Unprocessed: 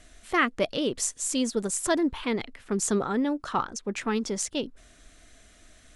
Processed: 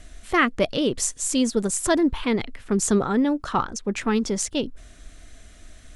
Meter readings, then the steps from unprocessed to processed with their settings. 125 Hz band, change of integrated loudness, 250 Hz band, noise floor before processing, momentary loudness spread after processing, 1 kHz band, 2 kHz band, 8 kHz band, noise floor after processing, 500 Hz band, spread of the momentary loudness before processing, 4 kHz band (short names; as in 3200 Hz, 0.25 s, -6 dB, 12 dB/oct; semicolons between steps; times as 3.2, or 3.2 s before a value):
+7.0 dB, +4.5 dB, +5.5 dB, -56 dBFS, 6 LU, +3.5 dB, +3.5 dB, +3.5 dB, -48 dBFS, +4.5 dB, 7 LU, +3.5 dB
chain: low shelf 150 Hz +8.5 dB; gain +3.5 dB